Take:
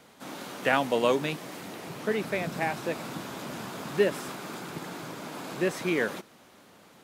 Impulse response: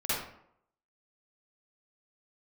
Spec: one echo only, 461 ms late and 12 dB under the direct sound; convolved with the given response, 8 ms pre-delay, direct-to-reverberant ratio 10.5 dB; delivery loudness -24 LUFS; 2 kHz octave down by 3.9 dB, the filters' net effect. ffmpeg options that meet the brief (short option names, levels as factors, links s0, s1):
-filter_complex "[0:a]equalizer=f=2000:t=o:g=-5,aecho=1:1:461:0.251,asplit=2[s0][s1];[1:a]atrim=start_sample=2205,adelay=8[s2];[s1][s2]afir=irnorm=-1:irlink=0,volume=0.112[s3];[s0][s3]amix=inputs=2:normalize=0,volume=2.24"